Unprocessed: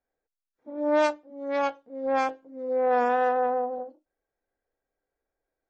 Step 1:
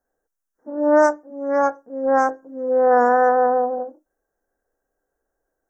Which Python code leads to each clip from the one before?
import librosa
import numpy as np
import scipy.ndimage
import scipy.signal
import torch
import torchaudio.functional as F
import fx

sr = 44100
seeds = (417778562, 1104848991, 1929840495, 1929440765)

y = scipy.signal.sosfilt(scipy.signal.ellip(3, 1.0, 50, [1700.0, 5800.0], 'bandstop', fs=sr, output='sos'), x)
y = fx.peak_eq(y, sr, hz=100.0, db=-15.0, octaves=0.44)
y = y * librosa.db_to_amplitude(8.5)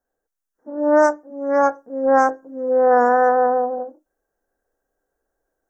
y = fx.rider(x, sr, range_db=10, speed_s=2.0)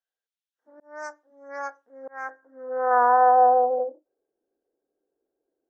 y = fx.filter_sweep_bandpass(x, sr, from_hz=3300.0, to_hz=350.0, start_s=1.7, end_s=4.35, q=2.6)
y = fx.auto_swell(y, sr, attack_ms=399.0)
y = y * librosa.db_to_amplitude(3.5)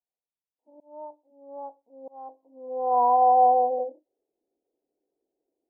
y = scipy.signal.sosfilt(scipy.signal.cheby1(6, 3, 990.0, 'lowpass', fs=sr, output='sos'), x)